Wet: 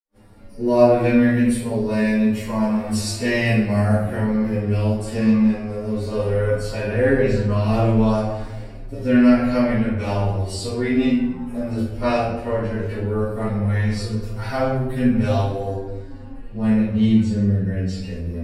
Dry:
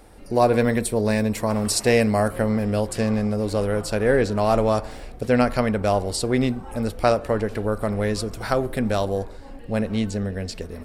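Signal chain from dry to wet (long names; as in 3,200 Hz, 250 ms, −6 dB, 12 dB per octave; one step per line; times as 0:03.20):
dynamic equaliser 2,600 Hz, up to +5 dB, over −42 dBFS, Q 1.6
multi-voice chorus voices 2, 0.22 Hz, delay 10 ms, depth 2.6 ms
phase-vocoder stretch with locked phases 1.7×
convolution reverb RT60 0.95 s, pre-delay 47 ms
level that may rise only so fast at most 550 dB per second
level −4 dB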